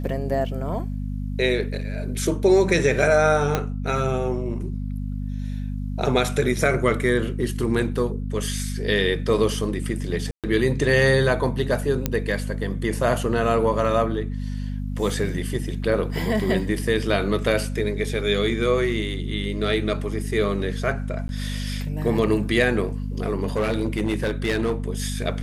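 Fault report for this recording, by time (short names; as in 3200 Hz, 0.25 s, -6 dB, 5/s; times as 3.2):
hum 50 Hz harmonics 5 -28 dBFS
3.55 pop -7 dBFS
10.31–10.44 gap 0.127 s
12.06 pop -7 dBFS
21.28–21.29 gap 11 ms
23.42–24.74 clipped -17.5 dBFS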